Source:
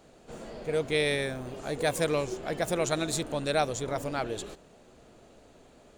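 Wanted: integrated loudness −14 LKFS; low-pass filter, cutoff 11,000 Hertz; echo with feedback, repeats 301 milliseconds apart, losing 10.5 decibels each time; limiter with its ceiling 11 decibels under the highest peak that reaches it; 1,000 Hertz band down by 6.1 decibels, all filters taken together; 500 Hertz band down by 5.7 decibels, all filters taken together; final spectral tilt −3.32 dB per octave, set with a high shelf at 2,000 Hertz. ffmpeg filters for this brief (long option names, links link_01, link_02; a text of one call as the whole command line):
ffmpeg -i in.wav -af "lowpass=11000,equalizer=frequency=500:width_type=o:gain=-5,equalizer=frequency=1000:width_type=o:gain=-8.5,highshelf=frequency=2000:gain=6,alimiter=limit=-23dB:level=0:latency=1,aecho=1:1:301|602|903:0.299|0.0896|0.0269,volume=20.5dB" out.wav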